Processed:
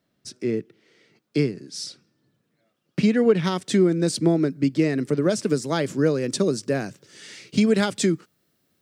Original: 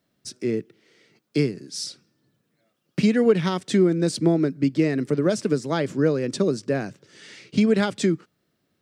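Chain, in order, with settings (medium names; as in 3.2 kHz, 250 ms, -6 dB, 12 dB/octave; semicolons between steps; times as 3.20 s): treble shelf 6.3 kHz -4.5 dB, from 3.44 s +5 dB, from 5.47 s +11 dB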